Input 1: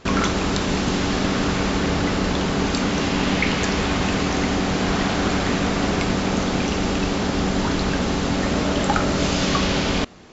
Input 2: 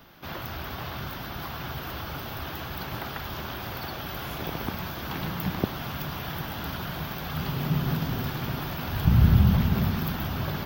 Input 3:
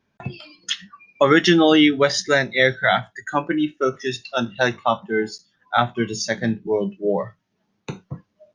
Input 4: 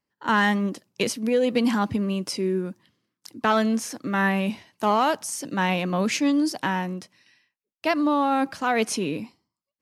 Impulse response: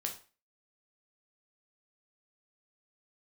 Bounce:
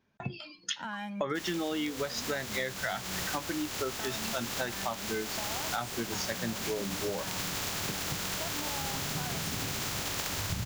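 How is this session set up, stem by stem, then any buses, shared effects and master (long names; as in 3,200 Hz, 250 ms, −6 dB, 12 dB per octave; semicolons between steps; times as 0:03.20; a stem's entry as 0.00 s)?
−9.5 dB, 1.30 s, no send, compressing power law on the bin magnitudes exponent 0.11
+1.0 dB, 1.45 s, no send, tuned comb filter 98 Hz, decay 0.17 s, mix 80%
−3.5 dB, 0.00 s, no send, no processing
−7.0 dB, 0.55 s, no send, comb filter 1.3 ms, depth 87%; downward compressor 4 to 1, threshold −30 dBFS, peak gain reduction 13.5 dB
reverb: not used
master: downward compressor 6 to 1, threshold −31 dBFS, peak gain reduction 16.5 dB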